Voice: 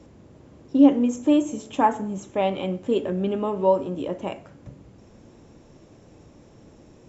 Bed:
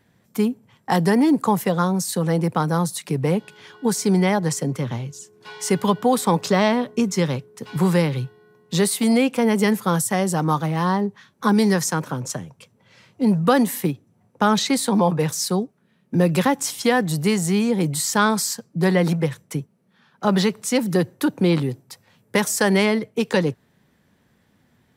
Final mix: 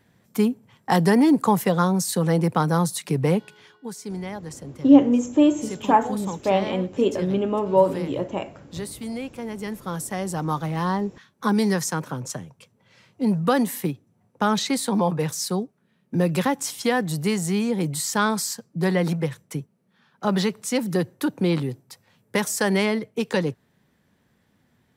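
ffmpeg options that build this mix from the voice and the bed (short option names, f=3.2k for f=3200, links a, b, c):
-filter_complex "[0:a]adelay=4100,volume=2dB[a];[1:a]volume=10.5dB,afade=t=out:st=3.33:d=0.48:silence=0.199526,afade=t=in:st=9.61:d=1.18:silence=0.298538[b];[a][b]amix=inputs=2:normalize=0"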